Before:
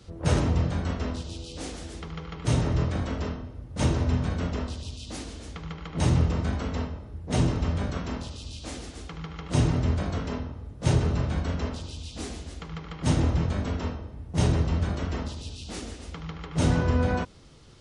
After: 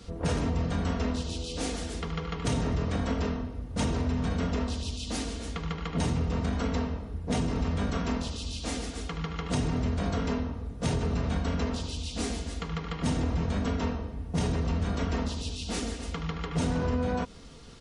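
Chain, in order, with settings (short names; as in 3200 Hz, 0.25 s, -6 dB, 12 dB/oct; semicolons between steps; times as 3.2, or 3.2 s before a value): comb 4.3 ms, depth 45%; in parallel at +2 dB: limiter -21 dBFS, peak gain reduction 9.5 dB; on the sum: compressor, threshold -21 dBFS, peak gain reduction 7 dB; gain -3.5 dB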